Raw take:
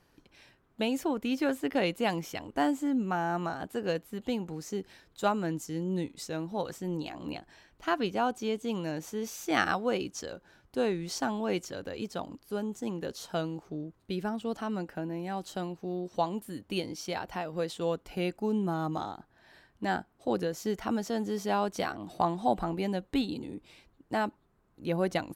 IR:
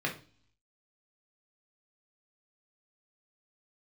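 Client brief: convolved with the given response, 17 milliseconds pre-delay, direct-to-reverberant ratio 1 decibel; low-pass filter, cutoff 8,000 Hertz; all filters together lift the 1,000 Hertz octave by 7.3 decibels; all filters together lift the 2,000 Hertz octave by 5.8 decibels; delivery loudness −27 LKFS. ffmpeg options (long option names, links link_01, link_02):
-filter_complex "[0:a]lowpass=8000,equalizer=frequency=1000:width_type=o:gain=9,equalizer=frequency=2000:width_type=o:gain=4,asplit=2[link_01][link_02];[1:a]atrim=start_sample=2205,adelay=17[link_03];[link_02][link_03]afir=irnorm=-1:irlink=0,volume=-8dB[link_04];[link_01][link_04]amix=inputs=2:normalize=0"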